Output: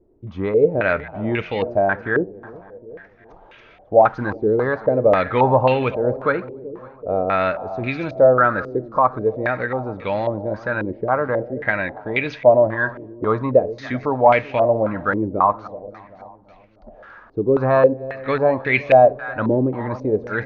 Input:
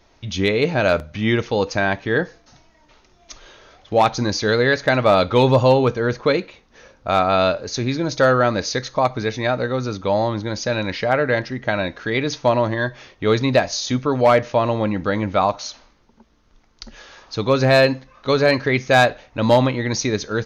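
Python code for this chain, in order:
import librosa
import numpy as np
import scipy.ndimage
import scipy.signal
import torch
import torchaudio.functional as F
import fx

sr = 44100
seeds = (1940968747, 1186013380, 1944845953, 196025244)

y = fx.delta_hold(x, sr, step_db=-33.0, at=(3.98, 4.45))
y = fx.echo_split(y, sr, split_hz=720.0, low_ms=380, high_ms=281, feedback_pct=52, wet_db=-16.0)
y = fx.filter_held_lowpass(y, sr, hz=3.7, low_hz=380.0, high_hz=2500.0)
y = y * librosa.db_to_amplitude(-4.5)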